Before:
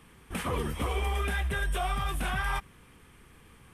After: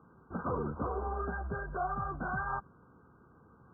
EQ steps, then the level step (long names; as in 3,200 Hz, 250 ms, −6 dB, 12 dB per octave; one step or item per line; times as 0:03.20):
high-pass filter 98 Hz 12 dB per octave
linear-phase brick-wall low-pass 1,600 Hz
−1.5 dB